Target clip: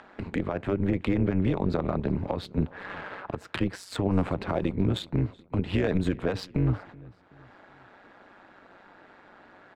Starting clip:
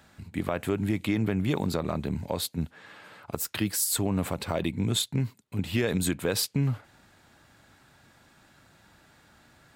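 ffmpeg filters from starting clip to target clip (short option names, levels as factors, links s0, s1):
-filter_complex "[0:a]agate=range=0.0447:threshold=0.00355:ratio=16:detection=peak,highshelf=f=3300:g=-11,acrossover=split=240[s0][s1];[s1]acompressor=mode=upward:threshold=0.0398:ratio=2.5[s2];[s0][s2]amix=inputs=2:normalize=0,alimiter=limit=0.112:level=0:latency=1:release=177,asplit=2[s3][s4];[s4]acrusher=bits=2:mix=0:aa=0.5,volume=0.316[s5];[s3][s5]amix=inputs=2:normalize=0,aecho=1:1:377|754|1131:0.075|0.0315|0.0132,adynamicsmooth=sensitivity=2.5:basefreq=2900,tremolo=f=190:d=0.75,volume=2.11"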